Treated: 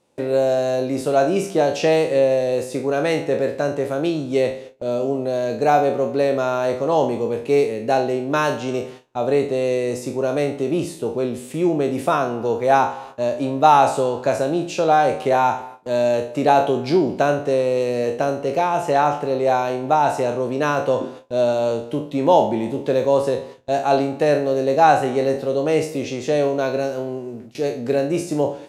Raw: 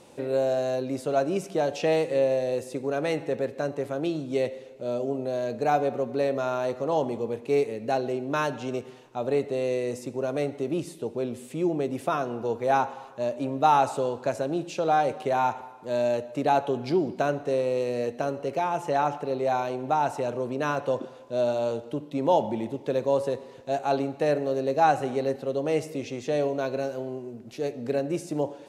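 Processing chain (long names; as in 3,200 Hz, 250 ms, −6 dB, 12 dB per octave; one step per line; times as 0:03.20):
peak hold with a decay on every bin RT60 0.42 s
noise gate with hold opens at −32 dBFS
level +6.5 dB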